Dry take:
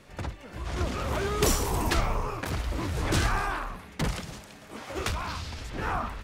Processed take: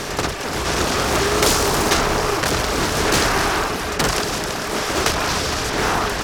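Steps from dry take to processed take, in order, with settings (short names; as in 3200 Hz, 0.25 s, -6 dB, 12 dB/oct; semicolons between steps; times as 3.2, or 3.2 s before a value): per-bin compression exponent 0.4; bell 5200 Hz +4.5 dB 0.4 oct; reverb RT60 5.7 s, pre-delay 45 ms, DRR 8 dB; reverb removal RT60 0.5 s; low shelf 170 Hz -10.5 dB; de-hum 93.51 Hz, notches 29; Doppler distortion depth 0.54 ms; gain +7 dB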